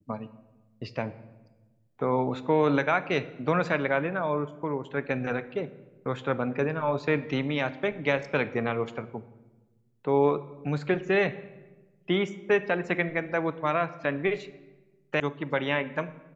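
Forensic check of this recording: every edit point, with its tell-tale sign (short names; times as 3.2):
15.2 sound cut off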